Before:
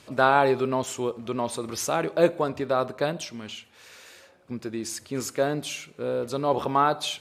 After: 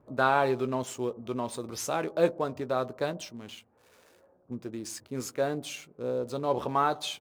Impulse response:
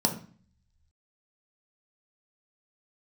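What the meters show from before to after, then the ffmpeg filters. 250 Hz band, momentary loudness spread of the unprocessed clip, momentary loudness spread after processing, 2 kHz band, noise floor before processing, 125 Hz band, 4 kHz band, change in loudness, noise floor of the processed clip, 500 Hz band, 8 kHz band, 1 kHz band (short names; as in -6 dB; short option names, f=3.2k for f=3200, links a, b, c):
-4.5 dB, 13 LU, 14 LU, -4.5 dB, -55 dBFS, -4.0 dB, -5.5 dB, -4.5 dB, -64 dBFS, -4.5 dB, -5.5 dB, -4.5 dB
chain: -filter_complex "[0:a]acrossover=split=1100[a][b];[b]aeval=exprs='sgn(val(0))*max(abs(val(0))-0.00422,0)':c=same[c];[a][c]amix=inputs=2:normalize=0,asplit=2[d][e];[e]adelay=16,volume=-12dB[f];[d][f]amix=inputs=2:normalize=0,volume=-4.5dB"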